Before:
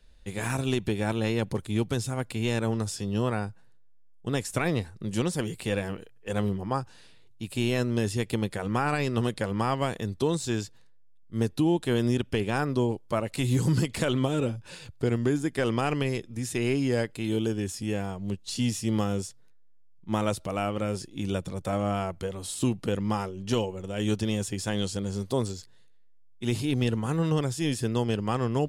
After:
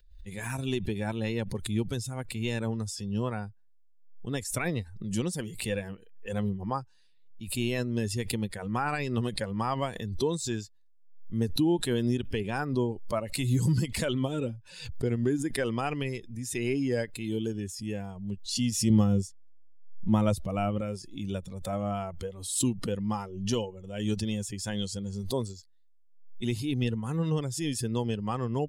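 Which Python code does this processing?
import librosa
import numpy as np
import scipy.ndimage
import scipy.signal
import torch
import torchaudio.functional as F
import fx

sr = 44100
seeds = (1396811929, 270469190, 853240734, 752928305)

y = fx.bin_expand(x, sr, power=1.5)
y = fx.low_shelf(y, sr, hz=350.0, db=10.0, at=(18.9, 20.81))
y = fx.pre_swell(y, sr, db_per_s=72.0)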